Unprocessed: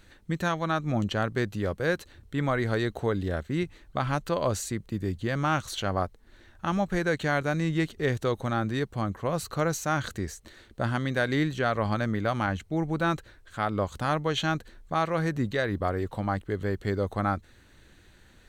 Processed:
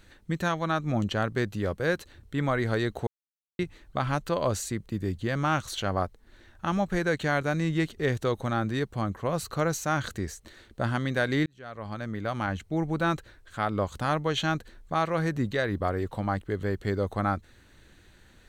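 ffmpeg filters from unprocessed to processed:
ffmpeg -i in.wav -filter_complex "[0:a]asplit=4[link_01][link_02][link_03][link_04];[link_01]atrim=end=3.07,asetpts=PTS-STARTPTS,afade=type=out:start_time=3.066:duration=0.004:curve=hsin[link_05];[link_02]atrim=start=3.07:end=3.59,asetpts=PTS-STARTPTS,volume=0[link_06];[link_03]atrim=start=3.59:end=11.46,asetpts=PTS-STARTPTS,afade=type=in:duration=0.004:curve=hsin,afade=type=out:start_time=7.866:duration=0.004:curve=hsin[link_07];[link_04]atrim=start=11.46,asetpts=PTS-STARTPTS,afade=type=in:duration=1.26[link_08];[link_05][link_06][link_07][link_08]concat=n=4:v=0:a=1" out.wav

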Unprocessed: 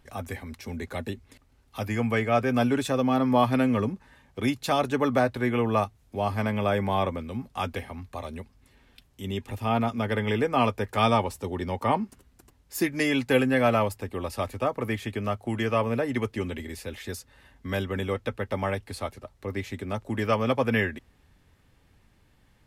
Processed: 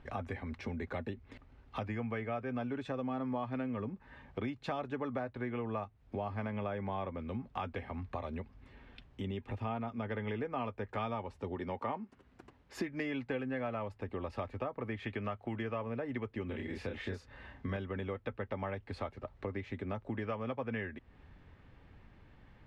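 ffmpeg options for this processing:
ffmpeg -i in.wav -filter_complex "[0:a]asettb=1/sr,asplit=3[link_01][link_02][link_03];[link_01]atrim=end=11.564[link_04];[link_02]atrim=start=11.56:end=12.78,asetpts=PTS-STARTPTS,afade=type=in:duration=0.004:curve=qsin,afade=type=out:start_time=1.216:duration=0.004:curve=qsin,highpass=frequency=170:poles=1[link_05];[link_03]atrim=start=12.776[link_06];[link_04][link_05]acrossfade=duration=0.004:curve1=hsin:curve2=qsin[link_07];[link_07][link_06]acrossfade=duration=0.004:curve1=qsin:curve2=hsin,asettb=1/sr,asplit=3[link_08][link_09][link_10];[link_08]atrim=end=14.994[link_11];[link_09]atrim=start=14.99:end=15.54,asetpts=PTS-STARTPTS,afade=type=in:duration=0.004:curve=qsin,afade=type=out:start_time=0.546:duration=0.004:curve=qsin,equalizer=frequency=2400:width_type=o:width=2.7:gain=5[link_12];[link_10]atrim=start=15.536[link_13];[link_11][link_12]acrossfade=duration=0.004:curve1=hsin:curve2=qsin[link_14];[link_14][link_13]acrossfade=duration=0.004:curve1=qsin:curve2=hsin,asettb=1/sr,asplit=3[link_15][link_16][link_17];[link_15]atrim=end=16.464[link_18];[link_16]atrim=start=16.46:end=17.77,asetpts=PTS-STARTPTS,afade=type=in:duration=0.004:curve=qsin,afade=type=out:start_time=1.306:duration=0.004:curve=qsin,asplit=2[link_19][link_20];[link_20]adelay=31,volume=-3dB[link_21];[link_19][link_21]amix=inputs=2:normalize=0,atrim=end_sample=57771[link_22];[link_17]atrim=start=17.766[link_23];[link_18][link_22]acrossfade=duration=0.004:curve1=hsin:curve2=qsin[link_24];[link_24][link_23]acrossfade=duration=0.004:curve1=qsin:curve2=hsin,lowpass=2500,acompressor=threshold=-40dB:ratio=5,volume=3.5dB" out.wav

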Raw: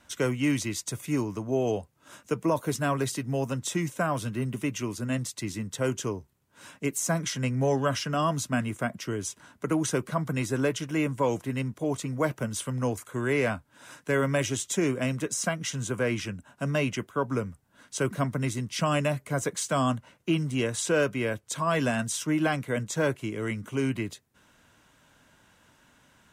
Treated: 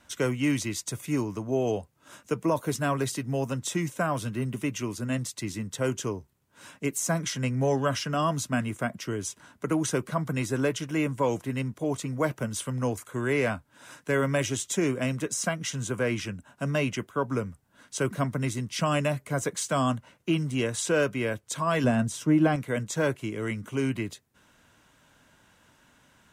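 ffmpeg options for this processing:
ffmpeg -i in.wav -filter_complex "[0:a]asettb=1/sr,asplit=3[link_01][link_02][link_03];[link_01]atrim=end=21.844[link_04];[link_02]atrim=start=21.84:end=22.56,asetpts=PTS-STARTPTS,afade=type=in:duration=0.004:curve=qsin,afade=type=out:start_time=0.716:duration=0.004:curve=qsin,tiltshelf=frequency=970:gain=6[link_05];[link_03]atrim=start=22.556[link_06];[link_04][link_05]acrossfade=duration=0.004:curve1=hsin:curve2=qsin[link_07];[link_07][link_06]acrossfade=duration=0.004:curve1=qsin:curve2=hsin" out.wav

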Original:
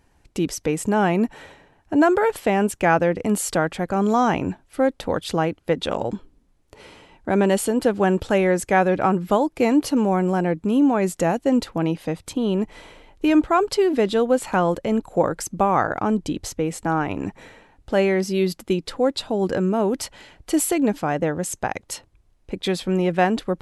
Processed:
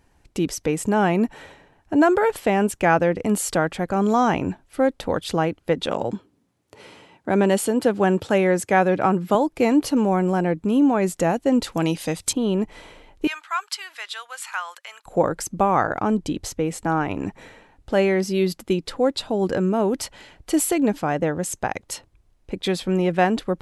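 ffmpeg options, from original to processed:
ffmpeg -i in.wav -filter_complex "[0:a]asettb=1/sr,asplit=3[link_01][link_02][link_03];[link_01]atrim=end=5.864[link_04];[link_02]atrim=start=5.86:end=9.35,asetpts=PTS-STARTPTS,afade=type=in:duration=0.004:curve=qsin,afade=type=out:start_time=3.486:duration=0.004:curve=qsin,highpass=frequency=94:width=0.5412,highpass=frequency=94:width=1.3066[link_05];[link_03]atrim=start=9.346[link_06];[link_04][link_05]acrossfade=duration=0.004:curve1=hsin:curve2=qsin[link_07];[link_07][link_06]acrossfade=duration=0.004:curve1=qsin:curve2=hsin,asettb=1/sr,asplit=3[link_08][link_09][link_10];[link_08]atrim=end=11.644[link_11];[link_09]atrim=start=11.64:end=12.33,asetpts=PTS-STARTPTS,afade=type=in:duration=0.004:curve=qsin,afade=type=out:start_time=0.686:duration=0.004:curve=qsin,equalizer=frequency=8000:width_type=o:width=2.5:gain=14.5[link_12];[link_10]atrim=start=12.326[link_13];[link_11][link_12]acrossfade=duration=0.004:curve1=hsin:curve2=qsin[link_14];[link_14][link_13]acrossfade=duration=0.004:curve1=qsin:curve2=hsin,asettb=1/sr,asplit=3[link_15][link_16][link_17];[link_15]atrim=end=13.274[link_18];[link_16]atrim=start=13.27:end=15.06,asetpts=PTS-STARTPTS,afade=type=in:duration=0.004:curve=qsin,afade=type=out:start_time=1.786:duration=0.004:curve=qsin,highpass=frequency=1200:width=0.5412,highpass=frequency=1200:width=1.3066[link_19];[link_17]atrim=start=15.056[link_20];[link_18][link_19]acrossfade=duration=0.004:curve1=hsin:curve2=qsin[link_21];[link_21][link_20]acrossfade=duration=0.004:curve1=qsin:curve2=hsin" out.wav

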